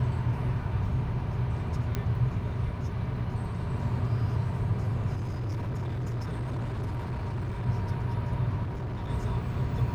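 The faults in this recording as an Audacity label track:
1.950000	1.950000	pop -16 dBFS
5.150000	7.670000	clipped -29 dBFS
8.630000	9.100000	clipped -30.5 dBFS

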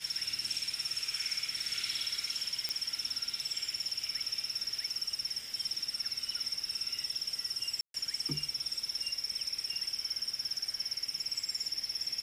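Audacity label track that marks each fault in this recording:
2.690000	2.690000	pop -18 dBFS
7.810000	7.940000	gap 0.132 s

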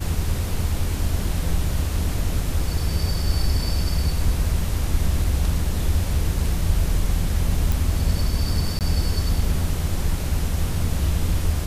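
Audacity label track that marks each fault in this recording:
7.720000	7.720000	pop
8.790000	8.810000	gap 18 ms

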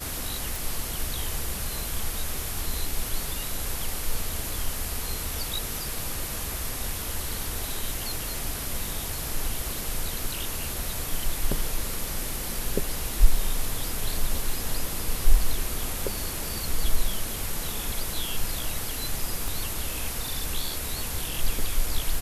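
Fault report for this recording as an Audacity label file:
0.560000	0.560000	pop
19.480000	19.480000	pop

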